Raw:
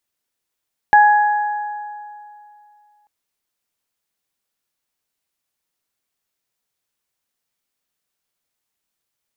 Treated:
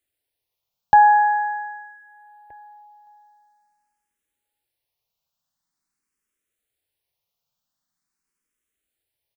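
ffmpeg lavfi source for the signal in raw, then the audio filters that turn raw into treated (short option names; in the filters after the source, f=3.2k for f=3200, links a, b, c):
-f lavfi -i "aevalsrc='0.473*pow(10,-3*t/2.57)*sin(2*PI*835*t)+0.251*pow(10,-3*t/1.96)*sin(2*PI*1670*t)':d=2.14:s=44100"
-filter_complex "[0:a]lowshelf=f=200:g=5.5,asplit=2[a][b];[b]adelay=1574,volume=-25dB,highshelf=f=4k:g=-35.4[c];[a][c]amix=inputs=2:normalize=0,asplit=2[d][e];[e]afreqshift=0.45[f];[d][f]amix=inputs=2:normalize=1"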